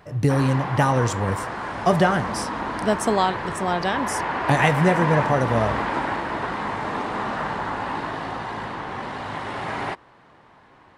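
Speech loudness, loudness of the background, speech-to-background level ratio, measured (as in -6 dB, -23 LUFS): -22.5 LUFS, -27.5 LUFS, 5.0 dB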